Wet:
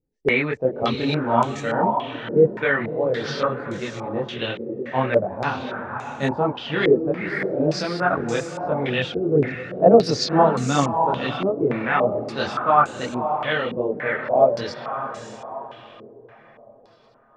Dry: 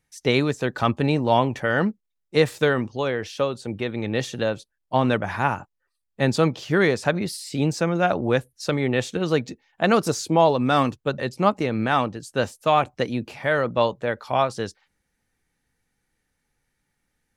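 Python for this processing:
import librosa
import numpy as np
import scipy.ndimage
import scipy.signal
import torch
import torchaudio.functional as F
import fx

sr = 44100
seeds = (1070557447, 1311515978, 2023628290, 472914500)

y = fx.echo_diffused(x, sr, ms=586, feedback_pct=43, wet_db=-7.5)
y = fx.chorus_voices(y, sr, voices=4, hz=1.1, base_ms=24, depth_ms=3.0, mix_pct=55)
y = fx.filter_held_lowpass(y, sr, hz=3.5, low_hz=400.0, high_hz=7100.0)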